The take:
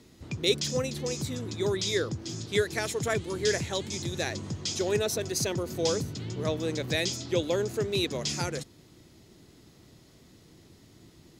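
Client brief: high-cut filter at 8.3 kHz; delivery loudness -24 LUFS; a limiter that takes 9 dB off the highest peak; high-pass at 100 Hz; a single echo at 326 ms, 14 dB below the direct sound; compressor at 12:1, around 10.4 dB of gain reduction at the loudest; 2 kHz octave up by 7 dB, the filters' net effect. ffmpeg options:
-af "highpass=100,lowpass=8300,equalizer=f=2000:t=o:g=8.5,acompressor=threshold=0.0398:ratio=12,alimiter=level_in=1.19:limit=0.0631:level=0:latency=1,volume=0.841,aecho=1:1:326:0.2,volume=3.76"

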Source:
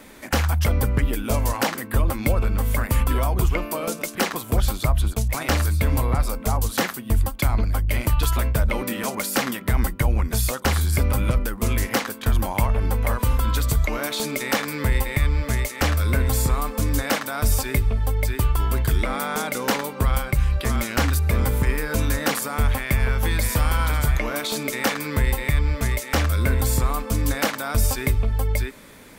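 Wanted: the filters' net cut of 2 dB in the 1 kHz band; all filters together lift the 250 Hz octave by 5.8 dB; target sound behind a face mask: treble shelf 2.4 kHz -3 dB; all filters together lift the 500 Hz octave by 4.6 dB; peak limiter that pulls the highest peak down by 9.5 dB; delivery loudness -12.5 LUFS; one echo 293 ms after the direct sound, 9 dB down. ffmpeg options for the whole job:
-af "equalizer=f=250:t=o:g=6,equalizer=f=500:t=o:g=5,equalizer=f=1000:t=o:g=-4,alimiter=limit=0.188:level=0:latency=1,highshelf=f=2400:g=-3,aecho=1:1:293:0.355,volume=3.98"

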